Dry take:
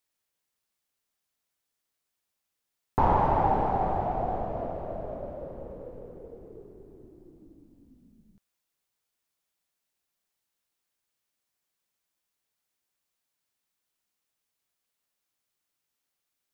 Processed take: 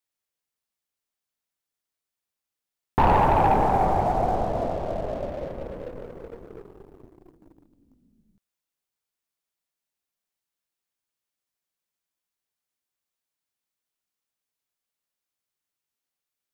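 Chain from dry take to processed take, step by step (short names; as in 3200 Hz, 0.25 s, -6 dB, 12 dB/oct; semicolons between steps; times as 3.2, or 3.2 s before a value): sample leveller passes 2; gain -1 dB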